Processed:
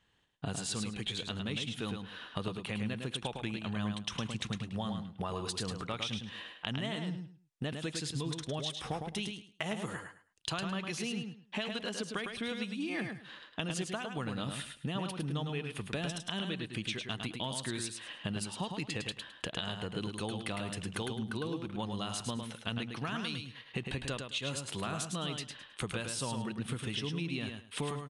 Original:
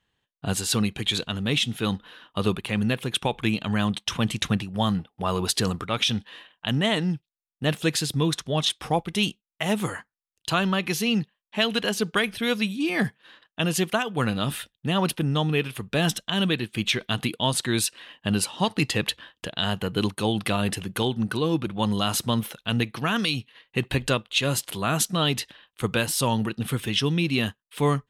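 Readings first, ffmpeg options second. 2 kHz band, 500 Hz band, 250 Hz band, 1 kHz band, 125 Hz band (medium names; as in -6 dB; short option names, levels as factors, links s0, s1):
-11.5 dB, -12.5 dB, -12.0 dB, -12.5 dB, -11.5 dB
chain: -af "acompressor=threshold=0.0141:ratio=8,aecho=1:1:106|212|318:0.531|0.111|0.0234,aresample=22050,aresample=44100,volume=1.26"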